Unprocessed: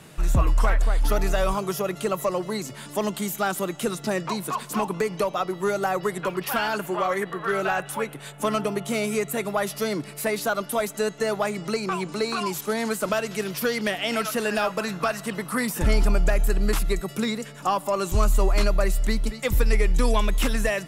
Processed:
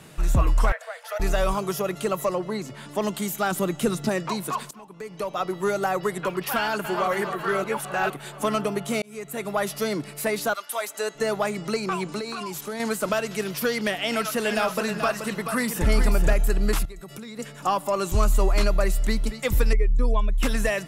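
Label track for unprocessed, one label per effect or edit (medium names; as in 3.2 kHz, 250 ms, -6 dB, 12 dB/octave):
0.720000	1.200000	rippled Chebyshev high-pass 460 Hz, ripple 9 dB
2.340000	3.010000	treble shelf 3.8 kHz -> 6.6 kHz -10.5 dB
3.510000	4.090000	bass shelf 260 Hz +8 dB
4.710000	5.450000	fade in quadratic, from -21.5 dB
6.570000	7.080000	echo throw 270 ms, feedback 70%, level -8.5 dB
7.640000	8.100000	reverse
9.020000	9.590000	fade in
10.530000	11.140000	high-pass 1.4 kHz -> 360 Hz
12.190000	12.800000	compression 3:1, threshold -30 dBFS
14.010000	16.330000	delay 431 ms -7.5 dB
16.850000	17.390000	compression 12:1, threshold -35 dBFS
19.730000	20.430000	spectral contrast enhancement exponent 1.5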